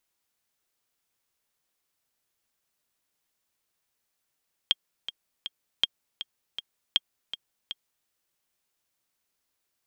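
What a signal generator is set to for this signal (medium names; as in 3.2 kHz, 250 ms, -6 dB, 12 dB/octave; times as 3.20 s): metronome 160 bpm, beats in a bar 3, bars 3, 3.23 kHz, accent 12.5 dB -8 dBFS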